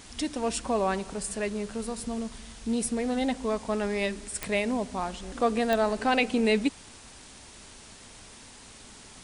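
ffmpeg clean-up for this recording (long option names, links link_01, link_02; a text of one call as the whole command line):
ffmpeg -i in.wav -af "adeclick=threshold=4,afftdn=noise_reduction=25:noise_floor=-49" out.wav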